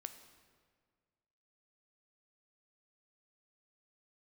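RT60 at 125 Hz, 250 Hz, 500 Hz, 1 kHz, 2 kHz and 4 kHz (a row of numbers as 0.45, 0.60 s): 2.0, 1.9, 1.9, 1.7, 1.5, 1.3 s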